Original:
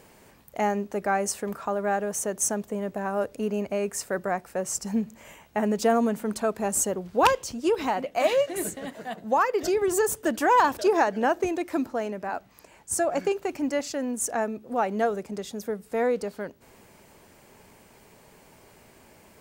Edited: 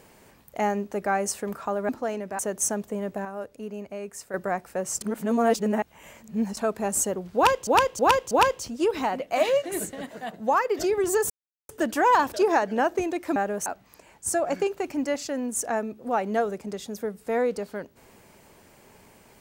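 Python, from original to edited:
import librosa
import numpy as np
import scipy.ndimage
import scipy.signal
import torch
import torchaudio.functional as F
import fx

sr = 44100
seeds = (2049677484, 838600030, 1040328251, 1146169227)

y = fx.edit(x, sr, fx.swap(start_s=1.89, length_s=0.3, other_s=11.81, other_length_s=0.5),
    fx.clip_gain(start_s=3.05, length_s=1.09, db=-8.0),
    fx.reverse_span(start_s=4.81, length_s=1.56),
    fx.repeat(start_s=7.15, length_s=0.32, count=4),
    fx.insert_silence(at_s=10.14, length_s=0.39), tone=tone)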